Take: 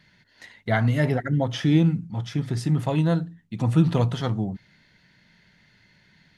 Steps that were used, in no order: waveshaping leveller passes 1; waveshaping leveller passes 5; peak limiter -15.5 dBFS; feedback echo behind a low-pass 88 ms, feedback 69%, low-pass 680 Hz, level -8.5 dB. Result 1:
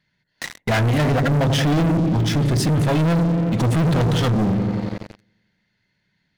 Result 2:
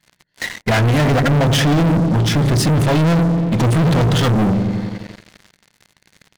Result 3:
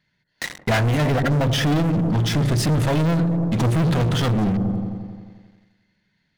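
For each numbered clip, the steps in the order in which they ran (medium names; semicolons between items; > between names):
first waveshaping leveller > feedback echo behind a low-pass > second waveshaping leveller > peak limiter; peak limiter > first waveshaping leveller > feedback echo behind a low-pass > second waveshaping leveller; second waveshaping leveller > feedback echo behind a low-pass > peak limiter > first waveshaping leveller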